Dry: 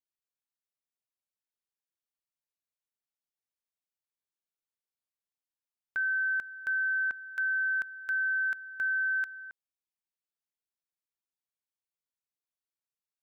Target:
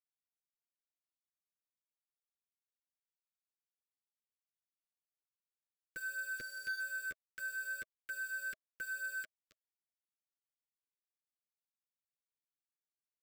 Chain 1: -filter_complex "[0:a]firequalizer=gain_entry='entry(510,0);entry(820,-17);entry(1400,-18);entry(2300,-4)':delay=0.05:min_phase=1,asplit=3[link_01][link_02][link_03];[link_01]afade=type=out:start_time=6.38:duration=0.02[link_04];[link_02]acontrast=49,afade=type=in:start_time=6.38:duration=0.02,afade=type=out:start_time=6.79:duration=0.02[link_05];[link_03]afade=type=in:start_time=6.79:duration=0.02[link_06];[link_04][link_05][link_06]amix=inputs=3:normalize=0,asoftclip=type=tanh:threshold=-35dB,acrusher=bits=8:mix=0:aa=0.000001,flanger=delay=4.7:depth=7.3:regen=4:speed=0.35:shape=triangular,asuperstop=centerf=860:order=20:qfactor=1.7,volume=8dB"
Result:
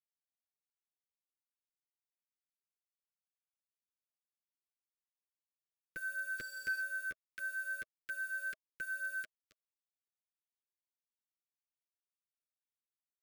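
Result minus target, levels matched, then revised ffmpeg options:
soft clipping: distortion −8 dB
-filter_complex "[0:a]firequalizer=gain_entry='entry(510,0);entry(820,-17);entry(1400,-18);entry(2300,-4)':delay=0.05:min_phase=1,asplit=3[link_01][link_02][link_03];[link_01]afade=type=out:start_time=6.38:duration=0.02[link_04];[link_02]acontrast=49,afade=type=in:start_time=6.38:duration=0.02,afade=type=out:start_time=6.79:duration=0.02[link_05];[link_03]afade=type=in:start_time=6.79:duration=0.02[link_06];[link_04][link_05][link_06]amix=inputs=3:normalize=0,asoftclip=type=tanh:threshold=-41.5dB,acrusher=bits=8:mix=0:aa=0.000001,flanger=delay=4.7:depth=7.3:regen=4:speed=0.35:shape=triangular,asuperstop=centerf=860:order=20:qfactor=1.7,volume=8dB"

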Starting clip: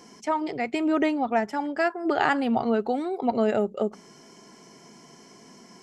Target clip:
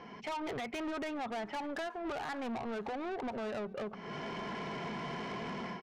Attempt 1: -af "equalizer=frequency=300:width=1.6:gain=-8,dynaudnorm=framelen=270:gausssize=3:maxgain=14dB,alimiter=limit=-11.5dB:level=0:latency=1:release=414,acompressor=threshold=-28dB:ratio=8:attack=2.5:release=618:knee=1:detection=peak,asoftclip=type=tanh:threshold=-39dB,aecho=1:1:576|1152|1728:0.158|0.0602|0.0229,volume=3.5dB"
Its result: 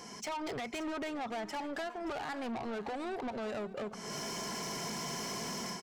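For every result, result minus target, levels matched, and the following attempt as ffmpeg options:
echo-to-direct +7.5 dB; 4,000 Hz band +4.5 dB
-af "equalizer=frequency=300:width=1.6:gain=-8,dynaudnorm=framelen=270:gausssize=3:maxgain=14dB,alimiter=limit=-11.5dB:level=0:latency=1:release=414,acompressor=threshold=-28dB:ratio=8:attack=2.5:release=618:knee=1:detection=peak,asoftclip=type=tanh:threshold=-39dB,aecho=1:1:576|1152:0.0668|0.0254,volume=3.5dB"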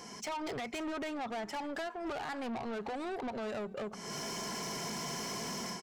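4,000 Hz band +4.5 dB
-af "lowpass=frequency=3100:width=0.5412,lowpass=frequency=3100:width=1.3066,equalizer=frequency=300:width=1.6:gain=-8,dynaudnorm=framelen=270:gausssize=3:maxgain=14dB,alimiter=limit=-11.5dB:level=0:latency=1:release=414,acompressor=threshold=-28dB:ratio=8:attack=2.5:release=618:knee=1:detection=peak,asoftclip=type=tanh:threshold=-39dB,aecho=1:1:576|1152:0.0668|0.0254,volume=3.5dB"

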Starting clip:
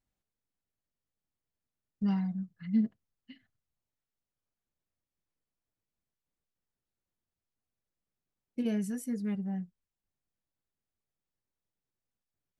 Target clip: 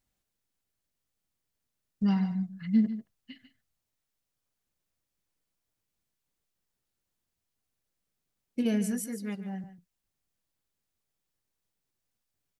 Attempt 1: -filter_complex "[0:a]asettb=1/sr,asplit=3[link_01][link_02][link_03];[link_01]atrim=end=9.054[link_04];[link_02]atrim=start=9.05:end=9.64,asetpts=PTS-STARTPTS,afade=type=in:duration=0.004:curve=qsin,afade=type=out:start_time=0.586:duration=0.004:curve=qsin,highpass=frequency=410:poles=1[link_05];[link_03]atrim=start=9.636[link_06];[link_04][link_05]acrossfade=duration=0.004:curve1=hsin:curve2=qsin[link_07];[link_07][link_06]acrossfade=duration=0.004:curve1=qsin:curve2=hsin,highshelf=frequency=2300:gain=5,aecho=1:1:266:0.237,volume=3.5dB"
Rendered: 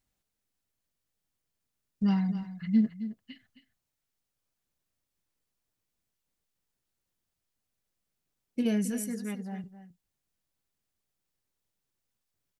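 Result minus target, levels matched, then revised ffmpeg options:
echo 120 ms late
-filter_complex "[0:a]asettb=1/sr,asplit=3[link_01][link_02][link_03];[link_01]atrim=end=9.054[link_04];[link_02]atrim=start=9.05:end=9.64,asetpts=PTS-STARTPTS,afade=type=in:duration=0.004:curve=qsin,afade=type=out:start_time=0.586:duration=0.004:curve=qsin,highpass=frequency=410:poles=1[link_05];[link_03]atrim=start=9.636[link_06];[link_04][link_05]acrossfade=duration=0.004:curve1=hsin:curve2=qsin[link_07];[link_07][link_06]acrossfade=duration=0.004:curve1=qsin:curve2=hsin,highshelf=frequency=2300:gain=5,aecho=1:1:146:0.237,volume=3.5dB"

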